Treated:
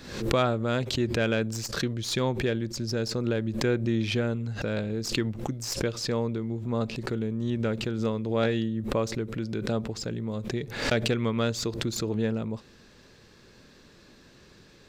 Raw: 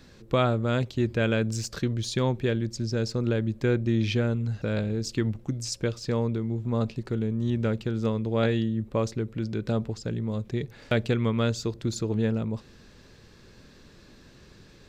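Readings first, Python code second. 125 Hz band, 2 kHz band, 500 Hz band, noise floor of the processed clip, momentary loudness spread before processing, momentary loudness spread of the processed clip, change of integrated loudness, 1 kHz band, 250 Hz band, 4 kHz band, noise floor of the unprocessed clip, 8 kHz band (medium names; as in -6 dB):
-3.5 dB, +1.5 dB, 0.0 dB, -55 dBFS, 6 LU, 6 LU, -1.0 dB, +0.5 dB, -1.0 dB, +3.5 dB, -53 dBFS, +2.5 dB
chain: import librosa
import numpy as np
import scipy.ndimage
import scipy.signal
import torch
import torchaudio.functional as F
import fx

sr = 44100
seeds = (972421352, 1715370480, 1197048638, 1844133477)

y = fx.tracing_dist(x, sr, depth_ms=0.025)
y = fx.low_shelf(y, sr, hz=140.0, db=-7.5)
y = fx.pre_swell(y, sr, db_per_s=77.0)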